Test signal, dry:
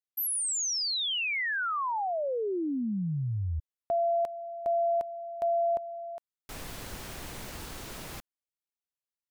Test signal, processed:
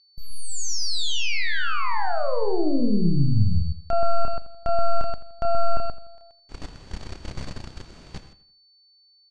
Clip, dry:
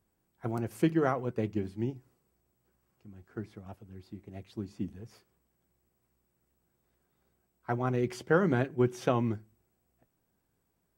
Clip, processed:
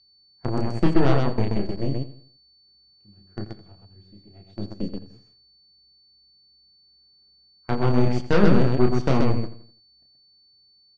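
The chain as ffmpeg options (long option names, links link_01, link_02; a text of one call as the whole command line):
ffmpeg -i in.wav -filter_complex "[0:a]aeval=exprs='0.282*(cos(1*acos(clip(val(0)/0.282,-1,1)))-cos(1*PI/2))+0.0501*(cos(8*acos(clip(val(0)/0.282,-1,1)))-cos(8*PI/2))':channel_layout=same,asplit=2[link_01][link_02];[link_02]aecho=0:1:29.15|128.3:0.631|0.708[link_03];[link_01][link_03]amix=inputs=2:normalize=0,aeval=exprs='val(0)+0.00562*sin(2*PI*4500*n/s)':channel_layout=same,agate=range=-11dB:threshold=-37dB:ratio=16:release=26:detection=rms,lowpass=frequency=7000:width=0.5412,lowpass=frequency=7000:width=1.3066,lowshelf=frequency=350:gain=9,asplit=2[link_04][link_05];[link_05]adelay=84,lowpass=frequency=4000:poles=1,volume=-14.5dB,asplit=2[link_06][link_07];[link_07]adelay=84,lowpass=frequency=4000:poles=1,volume=0.4,asplit=2[link_08][link_09];[link_09]adelay=84,lowpass=frequency=4000:poles=1,volume=0.4,asplit=2[link_10][link_11];[link_11]adelay=84,lowpass=frequency=4000:poles=1,volume=0.4[link_12];[link_06][link_08][link_10][link_12]amix=inputs=4:normalize=0[link_13];[link_04][link_13]amix=inputs=2:normalize=0,volume=-1dB" out.wav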